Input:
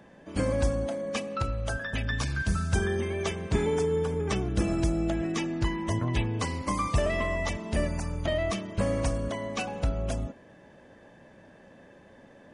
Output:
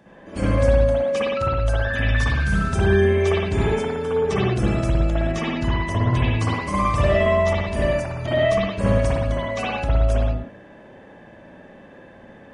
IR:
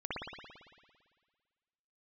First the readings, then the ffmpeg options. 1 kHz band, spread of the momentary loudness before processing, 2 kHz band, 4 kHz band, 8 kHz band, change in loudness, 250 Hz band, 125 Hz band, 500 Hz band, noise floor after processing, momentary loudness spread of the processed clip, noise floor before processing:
+9.0 dB, 5 LU, +8.5 dB, +6.0 dB, -0.5 dB, +8.5 dB, +5.5 dB, +9.0 dB, +9.5 dB, -46 dBFS, 6 LU, -54 dBFS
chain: -filter_complex "[1:a]atrim=start_sample=2205,afade=t=out:st=0.26:d=0.01,atrim=end_sample=11907[s0];[0:a][s0]afir=irnorm=-1:irlink=0,volume=1.78"

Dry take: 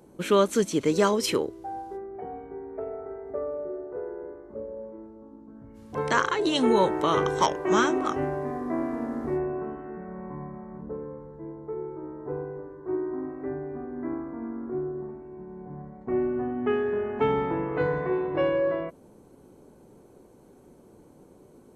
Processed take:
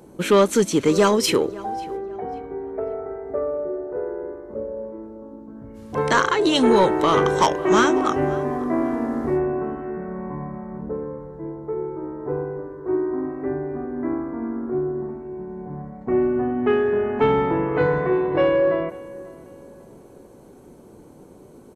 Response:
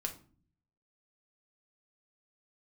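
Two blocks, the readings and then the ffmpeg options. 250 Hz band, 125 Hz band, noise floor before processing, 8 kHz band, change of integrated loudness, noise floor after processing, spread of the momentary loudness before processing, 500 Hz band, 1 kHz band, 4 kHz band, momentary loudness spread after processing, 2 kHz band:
+6.5 dB, +6.5 dB, -54 dBFS, +6.0 dB, +6.0 dB, -46 dBFS, 17 LU, +6.0 dB, +5.5 dB, +6.0 dB, 16 LU, +6.0 dB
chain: -filter_complex "[0:a]asoftclip=type=tanh:threshold=0.188,asplit=2[s0][s1];[s1]adelay=542,lowpass=f=3000:p=1,volume=0.106,asplit=2[s2][s3];[s3]adelay=542,lowpass=f=3000:p=1,volume=0.34,asplit=2[s4][s5];[s5]adelay=542,lowpass=f=3000:p=1,volume=0.34[s6];[s2][s4][s6]amix=inputs=3:normalize=0[s7];[s0][s7]amix=inputs=2:normalize=0,volume=2.24"

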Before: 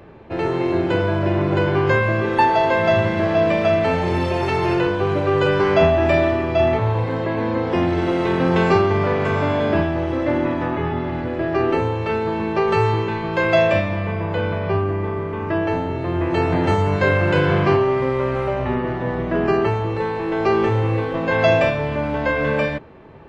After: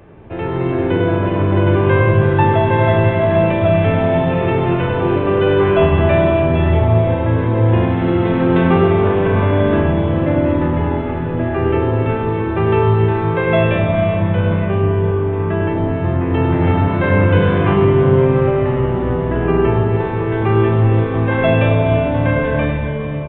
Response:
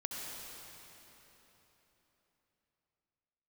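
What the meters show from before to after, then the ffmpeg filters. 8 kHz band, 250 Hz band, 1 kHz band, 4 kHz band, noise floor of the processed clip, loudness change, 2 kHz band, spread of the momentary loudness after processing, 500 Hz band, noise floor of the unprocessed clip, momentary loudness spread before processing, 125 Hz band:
no reading, +5.0 dB, +1.5 dB, -0.5 dB, -20 dBFS, +4.0 dB, +0.5 dB, 5 LU, +3.0 dB, -26 dBFS, 7 LU, +8.0 dB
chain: -filter_complex "[0:a]lowshelf=f=130:g=5.5,asplit=2[s0][s1];[1:a]atrim=start_sample=2205,lowshelf=f=400:g=9,adelay=99[s2];[s1][s2]afir=irnorm=-1:irlink=0,volume=0.631[s3];[s0][s3]amix=inputs=2:normalize=0,aresample=8000,aresample=44100,volume=0.841"

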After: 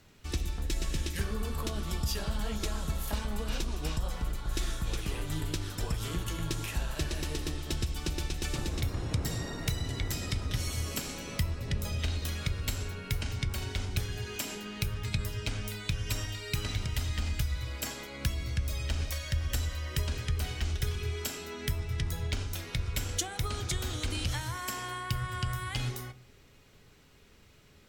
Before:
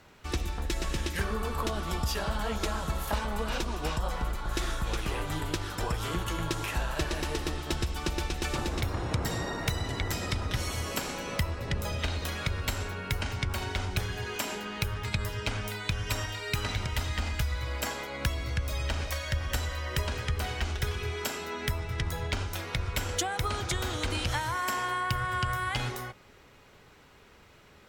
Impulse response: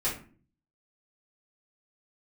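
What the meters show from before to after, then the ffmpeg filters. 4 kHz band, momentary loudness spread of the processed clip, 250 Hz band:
-2.0 dB, 3 LU, -2.0 dB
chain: -filter_complex "[0:a]equalizer=f=970:t=o:w=2.7:g=-10,asplit=2[s0][s1];[1:a]atrim=start_sample=2205[s2];[s1][s2]afir=irnorm=-1:irlink=0,volume=0.1[s3];[s0][s3]amix=inputs=2:normalize=0"

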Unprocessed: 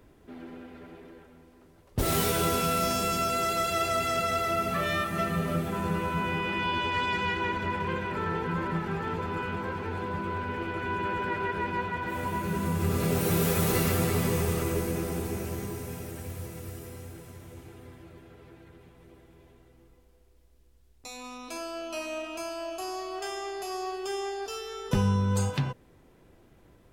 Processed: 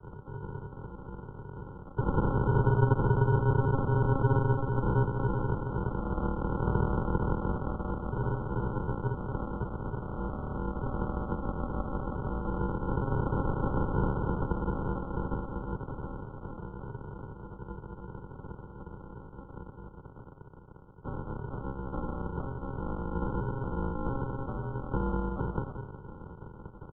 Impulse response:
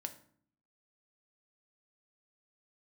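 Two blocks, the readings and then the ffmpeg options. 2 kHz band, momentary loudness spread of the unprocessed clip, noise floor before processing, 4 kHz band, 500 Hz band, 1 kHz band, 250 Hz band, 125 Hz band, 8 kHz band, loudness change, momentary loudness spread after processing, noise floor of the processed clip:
-10.0 dB, 18 LU, -59 dBFS, under -25 dB, -3.0 dB, -5.0 dB, -1.5 dB, +2.5 dB, under -40 dB, -2.5 dB, 19 LU, -49 dBFS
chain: -filter_complex "[0:a]aeval=exprs='val(0)+0.5*0.0126*sgn(val(0))':c=same,aemphasis=mode=production:type=75fm,agate=range=0.0224:threshold=0.0178:ratio=3:detection=peak,highpass=f=190:w=0.5412,highpass=f=190:w=1.3066,asplit=2[s0][s1];[s1]adelay=181,lowpass=f=930:p=1,volume=0.473,asplit=2[s2][s3];[s3]adelay=181,lowpass=f=930:p=1,volume=0.51,asplit=2[s4][s5];[s5]adelay=181,lowpass=f=930:p=1,volume=0.51,asplit=2[s6][s7];[s7]adelay=181,lowpass=f=930:p=1,volume=0.51,asplit=2[s8][s9];[s9]adelay=181,lowpass=f=930:p=1,volume=0.51,asplit=2[s10][s11];[s11]adelay=181,lowpass=f=930:p=1,volume=0.51[s12];[s0][s2][s4][s6][s8][s10][s12]amix=inputs=7:normalize=0,aresample=16000,acrusher=samples=30:mix=1:aa=0.000001,aresample=44100,highpass=f=240:t=q:w=0.5412,highpass=f=240:t=q:w=1.307,lowpass=f=2200:t=q:w=0.5176,lowpass=f=2200:t=q:w=0.7071,lowpass=f=2200:t=q:w=1.932,afreqshift=-390,afftfilt=real='re*eq(mod(floor(b*sr/1024/1500),2),0)':imag='im*eq(mod(floor(b*sr/1024/1500),2),0)':win_size=1024:overlap=0.75,volume=1.58"

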